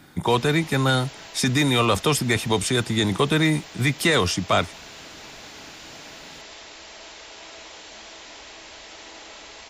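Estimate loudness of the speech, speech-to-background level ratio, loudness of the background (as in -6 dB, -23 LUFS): -21.5 LUFS, 19.0 dB, -40.5 LUFS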